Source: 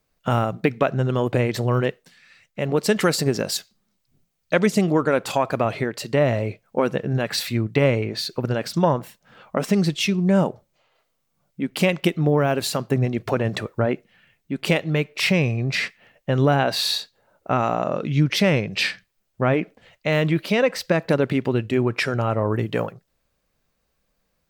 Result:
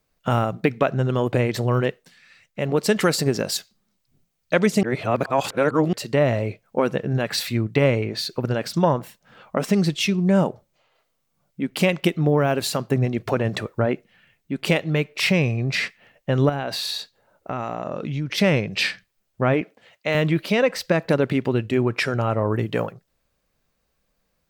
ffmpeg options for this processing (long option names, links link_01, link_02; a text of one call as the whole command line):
ffmpeg -i in.wav -filter_complex "[0:a]asettb=1/sr,asplit=3[link_01][link_02][link_03];[link_01]atrim=end=16.494[link_04];[link_02]atrim=start=16.49:end=18.38,asetpts=PTS-STARTPTS,afade=type=in:duration=0.004:curve=qsin,afade=type=out:start_time=1.886:duration=0.004:curve=qsin,acompressor=threshold=-24dB:ratio=4:attack=3.2:release=140:knee=1:detection=peak[link_05];[link_03]atrim=start=18.376[link_06];[link_04][link_05]acrossfade=duration=0.004:curve1=hsin:curve2=qsin[link_07];[link_07][link_06]acrossfade=duration=0.004:curve1=qsin:curve2=hsin,asettb=1/sr,asplit=3[link_08][link_09][link_10];[link_08]atrim=end=19.614[link_11];[link_09]atrim=start=19.61:end=20.15,asetpts=PTS-STARTPTS,afade=type=in:duration=0.004:curve=qsin,afade=type=out:start_time=0.536:duration=0.004:curve=qsin,highpass=frequency=300:poles=1[link_12];[link_10]atrim=start=20.146[link_13];[link_11][link_12]acrossfade=duration=0.004:curve1=hsin:curve2=qsin[link_14];[link_14][link_13]acrossfade=duration=0.004:curve1=qsin:curve2=hsin,asplit=3[link_15][link_16][link_17];[link_15]atrim=end=4.832[link_18];[link_16]atrim=start=4.828:end=5.932,asetpts=PTS-STARTPTS,areverse[link_19];[link_17]atrim=start=5.928[link_20];[link_18][link_19]acrossfade=duration=0.004:curve1=hsin:curve2=hsin[link_21];[link_21][link_20]acrossfade=duration=0.004:curve1=hsin:curve2=hsin" out.wav